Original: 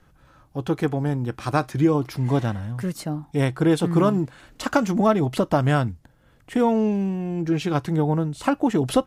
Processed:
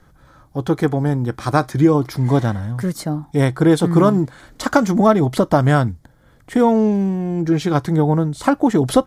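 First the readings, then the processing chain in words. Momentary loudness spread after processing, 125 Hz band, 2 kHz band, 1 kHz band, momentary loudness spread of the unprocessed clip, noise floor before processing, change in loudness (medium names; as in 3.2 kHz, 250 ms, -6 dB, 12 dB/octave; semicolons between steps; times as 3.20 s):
9 LU, +5.5 dB, +4.5 dB, +5.5 dB, 9 LU, -57 dBFS, +5.5 dB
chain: peaking EQ 2.7 kHz -12.5 dB 0.23 oct; trim +5.5 dB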